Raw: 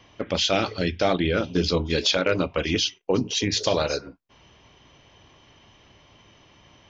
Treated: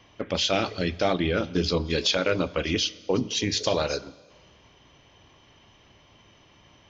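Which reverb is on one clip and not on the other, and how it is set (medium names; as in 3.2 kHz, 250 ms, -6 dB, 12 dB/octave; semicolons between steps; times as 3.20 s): Schroeder reverb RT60 1.7 s, combs from 28 ms, DRR 19.5 dB; trim -2 dB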